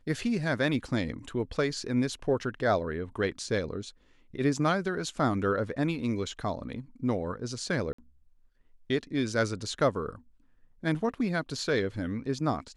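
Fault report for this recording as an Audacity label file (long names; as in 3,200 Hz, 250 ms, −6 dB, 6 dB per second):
7.930000	7.980000	drop-out 54 ms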